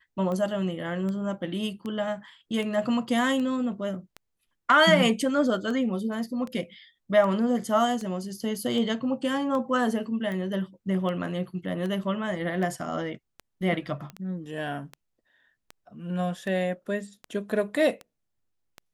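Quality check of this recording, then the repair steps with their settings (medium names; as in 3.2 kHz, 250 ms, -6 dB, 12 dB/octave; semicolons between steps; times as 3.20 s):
tick 78 rpm -23 dBFS
14.10 s: pop -25 dBFS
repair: de-click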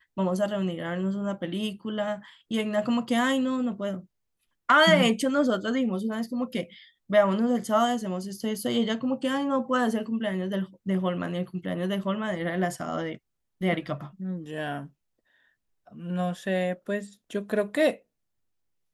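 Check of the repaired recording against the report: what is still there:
nothing left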